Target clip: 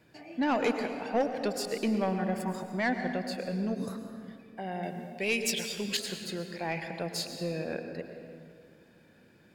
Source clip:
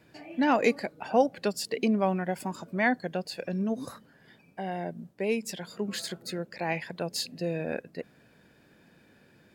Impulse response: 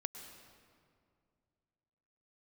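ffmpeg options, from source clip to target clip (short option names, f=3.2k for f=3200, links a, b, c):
-filter_complex "[0:a]asettb=1/sr,asplit=3[a][b][c];[a]atrim=end=4.834[d];[b]atrim=start=4.83:end=5.97,asetpts=PTS-STARTPTS,afade=t=in:d=0.004:c=qsin,afade=t=out:st=1.136:d=0.004:c=qsin,highshelf=f=1.9k:t=q:w=1.5:g=10.5[e];[c]atrim=start=5.966[f];[d][e]acrossfade=d=0.004:c1=hsin:c2=qsin[g];[g][f]acrossfade=d=0.004:c1=qsin:c2=hsin,asoftclip=type=tanh:threshold=-18dB[h];[1:a]atrim=start_sample=2205[i];[h][i]afir=irnorm=-1:irlink=0"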